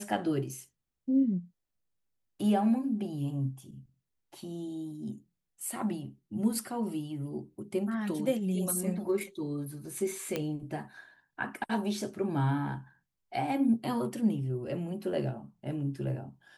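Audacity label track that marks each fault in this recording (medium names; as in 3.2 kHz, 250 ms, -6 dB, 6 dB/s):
10.360000	10.360000	pop -17 dBFS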